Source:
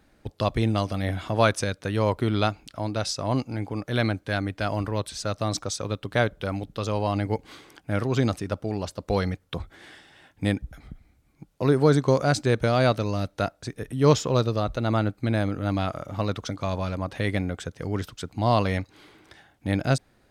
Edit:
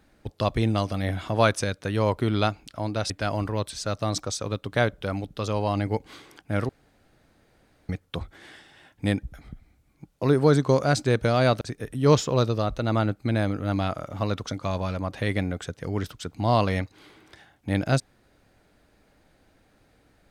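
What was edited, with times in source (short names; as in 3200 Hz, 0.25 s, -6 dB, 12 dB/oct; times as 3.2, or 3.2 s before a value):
3.1–4.49 cut
8.08–9.28 room tone
13–13.59 cut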